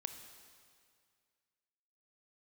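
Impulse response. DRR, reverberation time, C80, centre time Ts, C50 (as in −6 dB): 7.0 dB, 2.1 s, 9.0 dB, 28 ms, 8.0 dB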